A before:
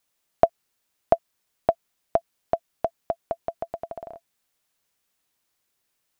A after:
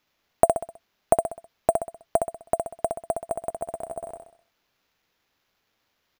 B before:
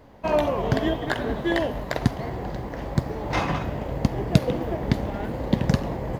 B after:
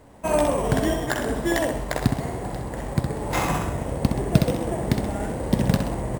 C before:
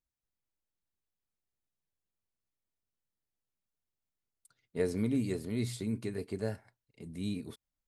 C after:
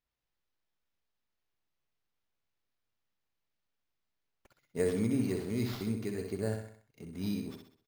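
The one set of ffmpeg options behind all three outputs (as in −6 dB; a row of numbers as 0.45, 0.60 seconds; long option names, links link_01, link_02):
-af "aecho=1:1:64|128|192|256|320:0.531|0.234|0.103|0.0452|0.0199,acrusher=samples=5:mix=1:aa=0.000001"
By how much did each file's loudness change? +1.0, +1.5, +1.0 LU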